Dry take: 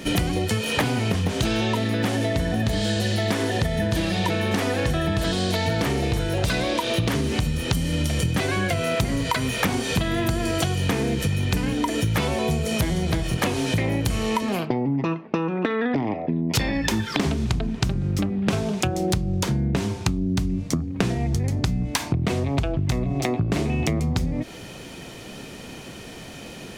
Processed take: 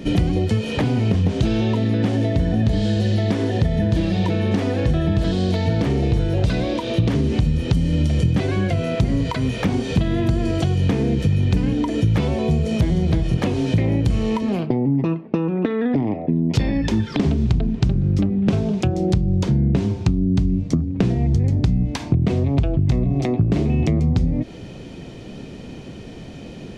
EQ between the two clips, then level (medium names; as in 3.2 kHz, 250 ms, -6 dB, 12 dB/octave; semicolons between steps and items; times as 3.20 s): tape spacing loss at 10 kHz 21 dB; peaking EQ 1.3 kHz -9.5 dB 2.4 oct; +6.5 dB